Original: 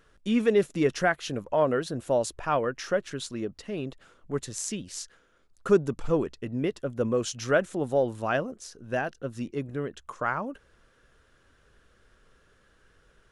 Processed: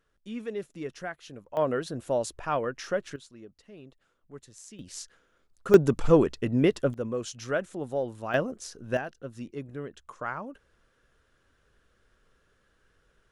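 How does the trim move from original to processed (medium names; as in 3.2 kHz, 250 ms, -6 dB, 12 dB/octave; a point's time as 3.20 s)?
-12.5 dB
from 1.57 s -2.5 dB
from 3.16 s -15 dB
from 4.79 s -3 dB
from 5.74 s +6 dB
from 6.94 s -5.5 dB
from 8.34 s +2 dB
from 8.97 s -5.5 dB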